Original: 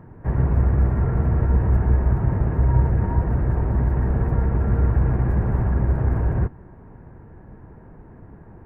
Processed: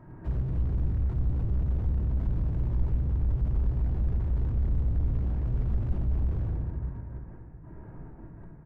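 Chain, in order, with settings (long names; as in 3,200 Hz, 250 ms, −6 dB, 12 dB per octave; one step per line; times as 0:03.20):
gate pattern "xxxxx.x.x..." 165 BPM −12 dB
repeating echo 65 ms, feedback 36%, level −15 dB
rectangular room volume 1,200 cubic metres, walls mixed, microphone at 2.8 metres
slew-rate limiting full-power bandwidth 11 Hz
level −8 dB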